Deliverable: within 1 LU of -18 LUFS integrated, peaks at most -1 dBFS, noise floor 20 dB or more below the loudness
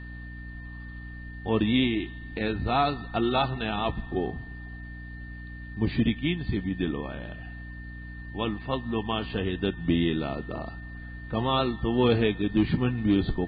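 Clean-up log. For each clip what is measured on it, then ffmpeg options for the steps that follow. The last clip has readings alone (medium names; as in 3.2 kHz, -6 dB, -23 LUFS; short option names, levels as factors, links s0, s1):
hum 60 Hz; highest harmonic 300 Hz; hum level -38 dBFS; steady tone 1.8 kHz; tone level -45 dBFS; loudness -27.5 LUFS; peak level -11.5 dBFS; loudness target -18.0 LUFS
-> -af "bandreject=f=60:t=h:w=4,bandreject=f=120:t=h:w=4,bandreject=f=180:t=h:w=4,bandreject=f=240:t=h:w=4,bandreject=f=300:t=h:w=4"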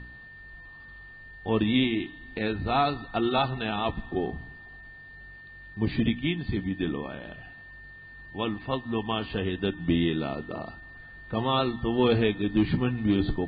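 hum not found; steady tone 1.8 kHz; tone level -45 dBFS
-> -af "bandreject=f=1800:w=30"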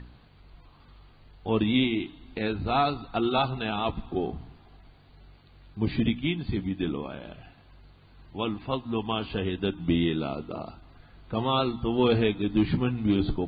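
steady tone not found; loudness -28.0 LUFS; peak level -12.0 dBFS; loudness target -18.0 LUFS
-> -af "volume=3.16"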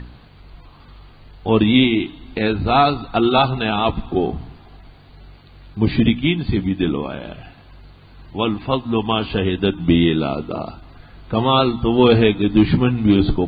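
loudness -18.0 LUFS; peak level -2.0 dBFS; noise floor -45 dBFS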